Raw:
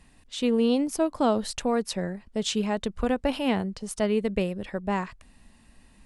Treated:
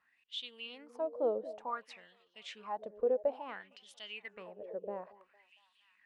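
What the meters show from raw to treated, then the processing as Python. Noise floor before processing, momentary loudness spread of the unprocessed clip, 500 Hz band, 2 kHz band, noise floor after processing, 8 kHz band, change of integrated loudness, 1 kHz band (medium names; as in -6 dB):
-57 dBFS, 8 LU, -9.0 dB, -12.0 dB, -74 dBFS, under -25 dB, -12.0 dB, -11.0 dB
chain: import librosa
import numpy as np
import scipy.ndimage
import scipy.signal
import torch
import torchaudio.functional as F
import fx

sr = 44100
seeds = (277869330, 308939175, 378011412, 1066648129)

y = fx.echo_stepped(x, sr, ms=229, hz=330.0, octaves=0.7, feedback_pct=70, wet_db=-10.0)
y = fx.filter_lfo_bandpass(y, sr, shape='sine', hz=0.57, low_hz=480.0, high_hz=3400.0, q=6.7)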